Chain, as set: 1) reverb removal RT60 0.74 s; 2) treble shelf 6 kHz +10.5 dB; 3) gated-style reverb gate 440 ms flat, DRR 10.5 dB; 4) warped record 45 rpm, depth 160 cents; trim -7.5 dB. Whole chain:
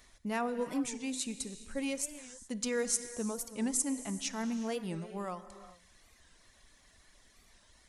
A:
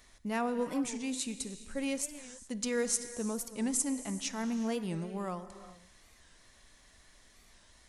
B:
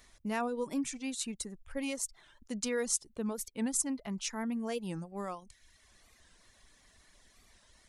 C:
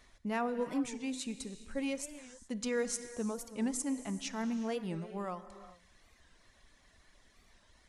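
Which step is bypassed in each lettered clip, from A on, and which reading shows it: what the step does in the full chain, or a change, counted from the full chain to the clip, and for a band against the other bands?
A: 1, 125 Hz band +1.5 dB; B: 3, momentary loudness spread change -1 LU; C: 2, 8 kHz band -6.5 dB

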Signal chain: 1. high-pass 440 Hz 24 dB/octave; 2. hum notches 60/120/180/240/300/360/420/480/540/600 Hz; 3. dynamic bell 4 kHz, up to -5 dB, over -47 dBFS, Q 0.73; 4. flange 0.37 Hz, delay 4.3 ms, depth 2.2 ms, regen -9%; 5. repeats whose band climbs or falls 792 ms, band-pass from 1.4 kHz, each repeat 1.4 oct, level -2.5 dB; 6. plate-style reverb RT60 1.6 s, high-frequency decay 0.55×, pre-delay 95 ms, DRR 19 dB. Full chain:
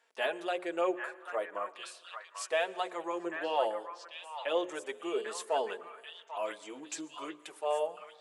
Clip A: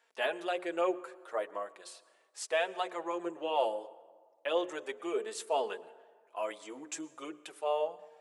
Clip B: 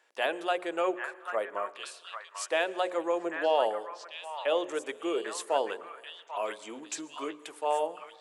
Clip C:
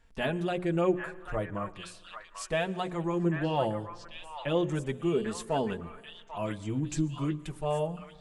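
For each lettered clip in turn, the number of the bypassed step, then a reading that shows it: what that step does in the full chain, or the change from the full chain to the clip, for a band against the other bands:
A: 5, echo-to-direct -5.5 dB to -19.0 dB; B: 4, loudness change +3.5 LU; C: 1, 250 Hz band +12.0 dB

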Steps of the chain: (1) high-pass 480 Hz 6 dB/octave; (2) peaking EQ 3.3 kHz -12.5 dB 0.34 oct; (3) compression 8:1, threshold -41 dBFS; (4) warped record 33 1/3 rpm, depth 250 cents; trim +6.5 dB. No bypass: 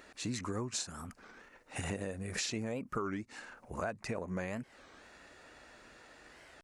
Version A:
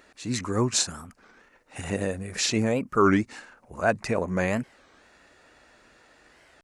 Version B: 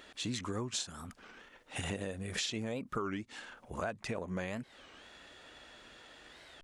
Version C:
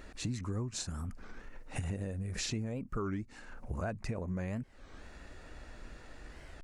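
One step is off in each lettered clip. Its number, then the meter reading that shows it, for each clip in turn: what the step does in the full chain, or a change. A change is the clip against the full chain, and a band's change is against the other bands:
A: 3, crest factor change +2.5 dB; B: 2, 4 kHz band +3.5 dB; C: 1, 125 Hz band +8.0 dB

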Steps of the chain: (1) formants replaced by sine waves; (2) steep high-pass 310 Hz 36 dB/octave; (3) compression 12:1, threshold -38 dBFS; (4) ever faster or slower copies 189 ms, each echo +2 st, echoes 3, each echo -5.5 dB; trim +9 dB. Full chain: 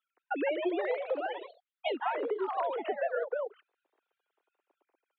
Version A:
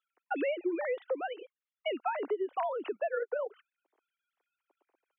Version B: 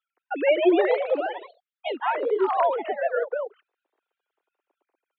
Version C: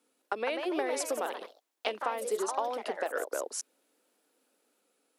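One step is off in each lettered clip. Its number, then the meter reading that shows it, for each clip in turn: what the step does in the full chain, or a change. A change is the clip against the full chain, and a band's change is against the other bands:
4, loudness change -1.0 LU; 3, mean gain reduction 7.0 dB; 1, 4 kHz band +4.5 dB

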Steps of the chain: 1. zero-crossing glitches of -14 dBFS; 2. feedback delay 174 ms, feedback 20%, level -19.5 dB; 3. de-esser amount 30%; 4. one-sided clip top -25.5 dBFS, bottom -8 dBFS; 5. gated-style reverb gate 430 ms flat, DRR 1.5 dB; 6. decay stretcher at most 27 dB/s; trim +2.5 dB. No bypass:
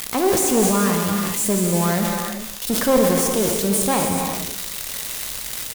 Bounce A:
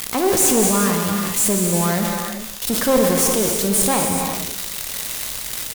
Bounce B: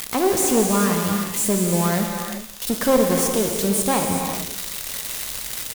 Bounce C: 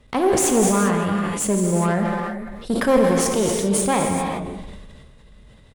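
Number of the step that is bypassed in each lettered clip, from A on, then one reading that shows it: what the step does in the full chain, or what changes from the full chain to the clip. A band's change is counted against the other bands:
3, crest factor change -1.5 dB; 6, crest factor change -2.0 dB; 1, distortion -3 dB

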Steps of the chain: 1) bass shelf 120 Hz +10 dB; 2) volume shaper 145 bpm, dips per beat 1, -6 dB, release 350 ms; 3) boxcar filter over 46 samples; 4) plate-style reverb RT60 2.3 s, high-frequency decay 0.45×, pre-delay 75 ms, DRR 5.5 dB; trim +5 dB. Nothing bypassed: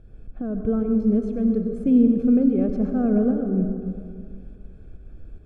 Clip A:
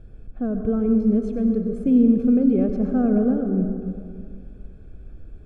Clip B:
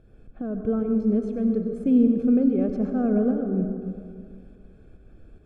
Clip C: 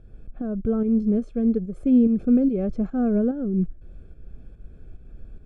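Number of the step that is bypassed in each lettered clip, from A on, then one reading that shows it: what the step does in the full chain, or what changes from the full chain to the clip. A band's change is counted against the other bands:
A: 2, momentary loudness spread change -2 LU; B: 1, 125 Hz band -2.0 dB; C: 4, momentary loudness spread change -6 LU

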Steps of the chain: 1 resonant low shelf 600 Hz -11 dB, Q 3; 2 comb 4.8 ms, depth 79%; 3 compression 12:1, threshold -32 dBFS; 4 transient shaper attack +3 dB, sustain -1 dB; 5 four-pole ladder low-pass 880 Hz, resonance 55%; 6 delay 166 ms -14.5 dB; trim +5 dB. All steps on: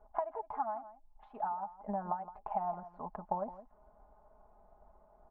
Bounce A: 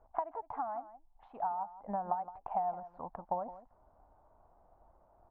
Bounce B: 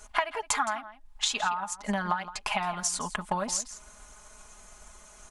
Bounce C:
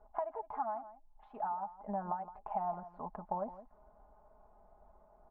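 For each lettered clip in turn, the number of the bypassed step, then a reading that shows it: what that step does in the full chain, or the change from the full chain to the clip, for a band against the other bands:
2, 1 kHz band +3.5 dB; 5, 2 kHz band +18.5 dB; 4, crest factor change -2.0 dB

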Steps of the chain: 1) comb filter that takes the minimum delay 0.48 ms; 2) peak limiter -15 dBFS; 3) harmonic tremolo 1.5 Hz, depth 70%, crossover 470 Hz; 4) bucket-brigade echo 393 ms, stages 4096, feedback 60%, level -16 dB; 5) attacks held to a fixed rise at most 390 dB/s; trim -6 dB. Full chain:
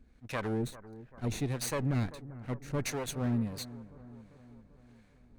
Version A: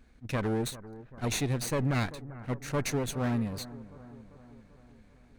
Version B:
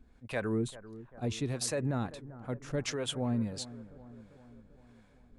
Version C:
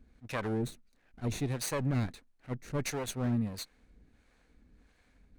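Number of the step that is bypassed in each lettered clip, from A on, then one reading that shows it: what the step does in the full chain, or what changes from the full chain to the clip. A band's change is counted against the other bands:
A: 3, crest factor change -3.0 dB; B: 1, 4 kHz band +4.0 dB; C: 4, momentary loudness spread change -7 LU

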